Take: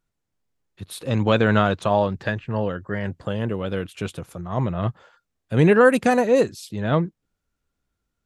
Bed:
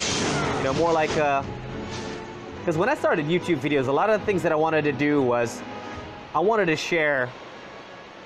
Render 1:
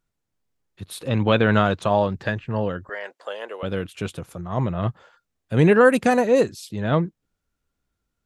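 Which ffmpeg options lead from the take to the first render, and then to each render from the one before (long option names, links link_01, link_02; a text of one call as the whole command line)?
ffmpeg -i in.wav -filter_complex "[0:a]asettb=1/sr,asplit=3[link_01][link_02][link_03];[link_01]atrim=end=1.084[link_04];[link_02]atrim=start=1.08:end=1.54,asetpts=PTS-STARTPTS,afade=type=in:duration=0.004:curve=qsin,afade=type=out:start_time=0.456:duration=0.004:curve=qsin,highshelf=frequency=4500:width_type=q:width=1.5:gain=-7.5[link_05];[link_03]atrim=start=1.536[link_06];[link_04][link_05]acrossfade=duration=0.004:curve1=hsin:curve2=qsin[link_07];[link_07][link_06]acrossfade=duration=0.004:curve1=qsin:curve2=hsin,asettb=1/sr,asplit=3[link_08][link_09][link_10];[link_08]atrim=end=2.894[link_11];[link_09]atrim=start=2.89:end=3.63,asetpts=PTS-STARTPTS,afade=type=in:duration=0.004:curve=qsin,afade=type=out:start_time=0.736:duration=0.004:curve=qsin,highpass=frequency=500:width=0.5412,highpass=frequency=500:width=1.3066[link_12];[link_10]atrim=start=3.626[link_13];[link_11][link_12]acrossfade=duration=0.004:curve1=hsin:curve2=qsin[link_14];[link_14][link_13]acrossfade=duration=0.004:curve1=qsin:curve2=hsin" out.wav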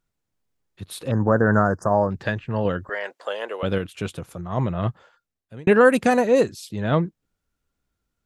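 ffmpeg -i in.wav -filter_complex "[0:a]asettb=1/sr,asplit=3[link_01][link_02][link_03];[link_01]atrim=end=1.114[link_04];[link_02]atrim=start=1.11:end=2.11,asetpts=PTS-STARTPTS,afade=type=in:duration=0.004:curve=qsin,afade=type=out:start_time=0.996:duration=0.004:curve=qsin,asuperstop=centerf=3000:order=20:qfactor=0.98[link_05];[link_03]atrim=start=2.106[link_06];[link_04][link_05]acrossfade=duration=0.004:curve1=hsin:curve2=qsin[link_07];[link_07][link_06]acrossfade=duration=0.004:curve1=qsin:curve2=hsin,asplit=4[link_08][link_09][link_10][link_11];[link_08]atrim=end=2.652[link_12];[link_09]atrim=start=2.648:end=3.782,asetpts=PTS-STARTPTS,volume=3.5dB[link_13];[link_10]atrim=start=3.778:end=5.67,asetpts=PTS-STARTPTS,afade=type=out:start_time=1.102:duration=0.79[link_14];[link_11]atrim=start=5.67,asetpts=PTS-STARTPTS,afade=type=in:duration=0.004:curve=hsin[link_15];[link_12][link_13]acrossfade=duration=0.004:curve1=hsin:curve2=hsin[link_16];[link_14][link_15]concat=n=2:v=0:a=1[link_17];[link_16][link_17]acrossfade=duration=0.004:curve1=hsin:curve2=hsin" out.wav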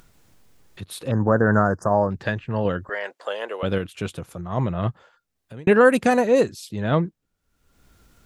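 ffmpeg -i in.wav -af "acompressor=mode=upward:threshold=-36dB:ratio=2.5" out.wav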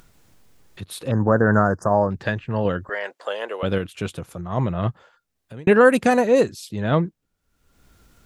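ffmpeg -i in.wav -af "volume=1dB" out.wav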